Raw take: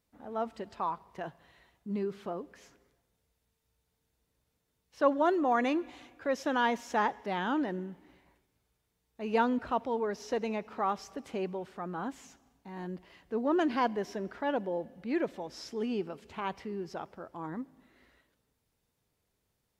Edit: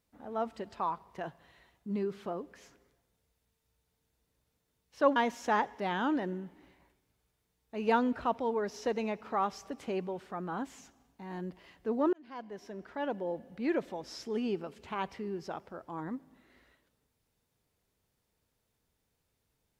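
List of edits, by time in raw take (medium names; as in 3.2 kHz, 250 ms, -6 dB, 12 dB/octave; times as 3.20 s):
5.16–6.62 s: delete
13.59–14.97 s: fade in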